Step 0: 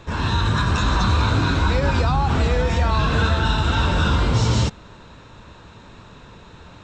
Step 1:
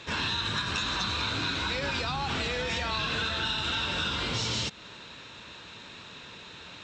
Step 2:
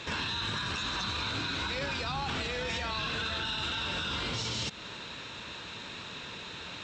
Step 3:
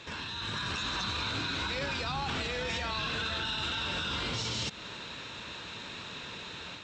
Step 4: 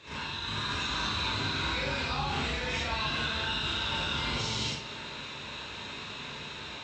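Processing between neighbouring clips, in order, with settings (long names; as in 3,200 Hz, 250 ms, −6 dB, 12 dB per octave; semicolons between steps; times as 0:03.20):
meter weighting curve D; downward compressor, threshold −23 dBFS, peak gain reduction 9 dB; level −4.5 dB
brickwall limiter −28.5 dBFS, peak gain reduction 10.5 dB; level +3.5 dB
automatic gain control gain up to 6 dB; level −6 dB
convolution reverb RT60 0.60 s, pre-delay 25 ms, DRR −8 dB; level −6.5 dB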